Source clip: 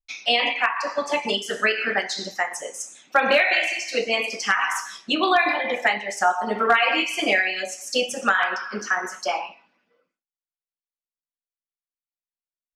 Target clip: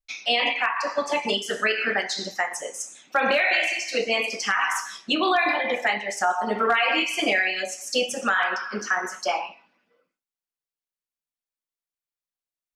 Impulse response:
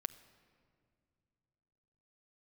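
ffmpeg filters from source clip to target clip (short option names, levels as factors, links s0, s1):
-af "alimiter=limit=0.237:level=0:latency=1:release=17"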